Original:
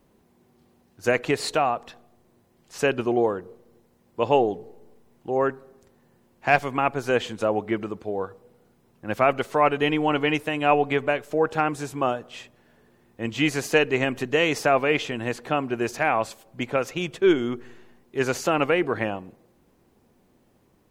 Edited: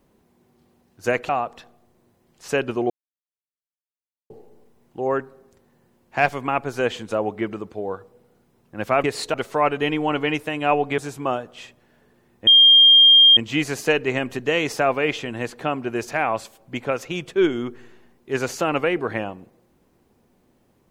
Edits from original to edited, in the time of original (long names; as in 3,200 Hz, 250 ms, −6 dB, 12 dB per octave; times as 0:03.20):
0:01.29–0:01.59: move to 0:09.34
0:03.20–0:04.60: silence
0:10.98–0:11.74: remove
0:13.23: insert tone 3,210 Hz −8 dBFS 0.90 s